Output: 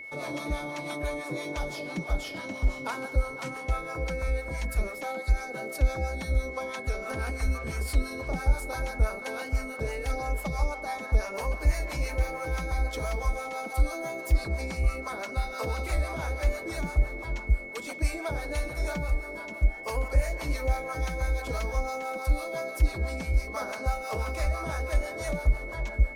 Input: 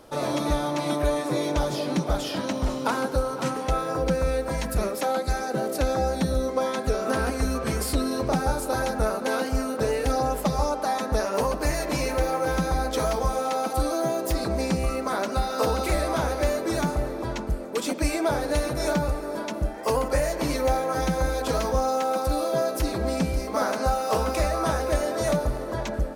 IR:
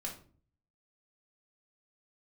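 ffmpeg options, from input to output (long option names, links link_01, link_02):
-filter_complex "[0:a]acrossover=split=590[link_01][link_02];[link_01]aeval=exprs='val(0)*(1-0.7/2+0.7/2*cos(2*PI*6*n/s))':channel_layout=same[link_03];[link_02]aeval=exprs='val(0)*(1-0.7/2-0.7/2*cos(2*PI*6*n/s))':channel_layout=same[link_04];[link_03][link_04]amix=inputs=2:normalize=0,aeval=exprs='val(0)+0.02*sin(2*PI*2200*n/s)':channel_layout=same,asubboost=boost=5:cutoff=80,volume=-5.5dB"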